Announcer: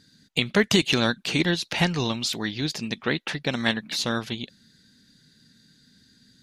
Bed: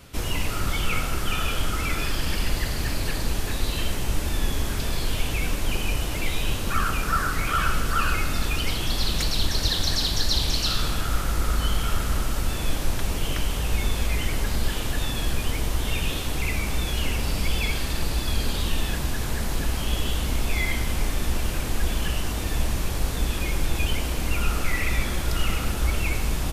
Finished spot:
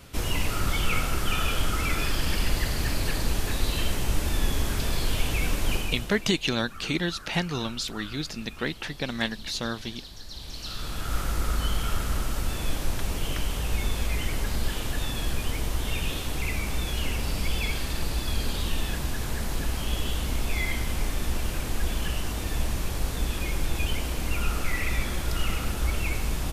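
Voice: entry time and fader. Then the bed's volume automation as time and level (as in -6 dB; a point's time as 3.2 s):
5.55 s, -4.5 dB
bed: 5.74 s -0.5 dB
6.39 s -19.5 dB
10.25 s -19.5 dB
11.18 s -3 dB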